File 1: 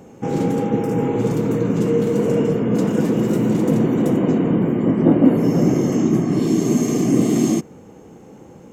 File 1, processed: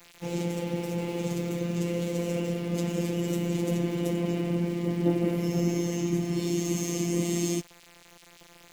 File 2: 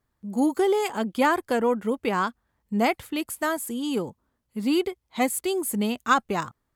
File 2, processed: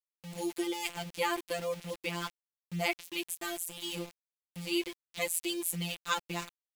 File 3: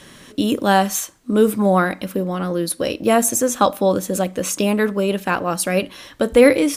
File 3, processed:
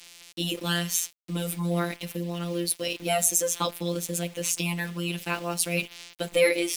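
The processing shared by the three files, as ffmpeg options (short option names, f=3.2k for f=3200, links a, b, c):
-af "afftfilt=real='hypot(re,im)*cos(PI*b)':imag='0':win_size=1024:overlap=0.75,aeval=exprs='val(0)*gte(abs(val(0)),0.0126)':c=same,highshelf=f=1.9k:t=q:w=1.5:g=7.5,volume=-7.5dB"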